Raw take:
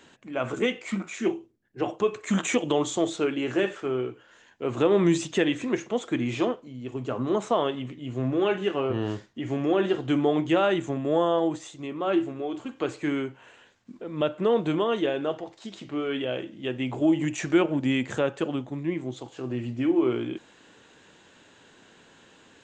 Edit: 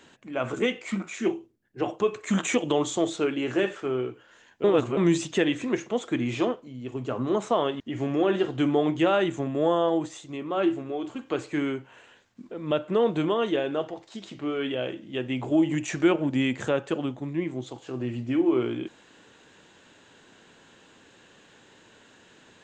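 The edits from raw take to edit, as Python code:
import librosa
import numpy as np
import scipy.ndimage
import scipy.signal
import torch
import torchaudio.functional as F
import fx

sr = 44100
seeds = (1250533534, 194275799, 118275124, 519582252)

y = fx.edit(x, sr, fx.reverse_span(start_s=4.64, length_s=0.33),
    fx.cut(start_s=7.8, length_s=1.5), tone=tone)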